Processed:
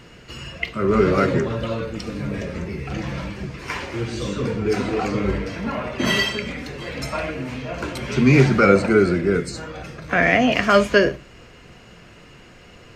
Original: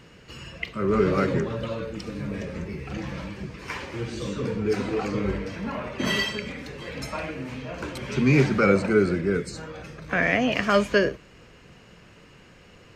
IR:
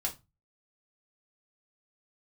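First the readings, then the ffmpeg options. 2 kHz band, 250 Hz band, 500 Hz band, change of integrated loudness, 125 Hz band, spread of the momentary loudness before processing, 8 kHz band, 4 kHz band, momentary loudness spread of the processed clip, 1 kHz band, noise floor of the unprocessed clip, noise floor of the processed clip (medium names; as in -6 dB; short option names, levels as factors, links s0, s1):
+5.0 dB, +4.5 dB, +5.0 dB, +5.0 dB, +5.0 dB, 15 LU, +5.0 dB, +5.5 dB, 16 LU, +6.5 dB, -51 dBFS, -46 dBFS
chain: -filter_complex "[0:a]asplit=2[s0][s1];[1:a]atrim=start_sample=2205[s2];[s1][s2]afir=irnorm=-1:irlink=0,volume=0.335[s3];[s0][s3]amix=inputs=2:normalize=0,volume=1.41"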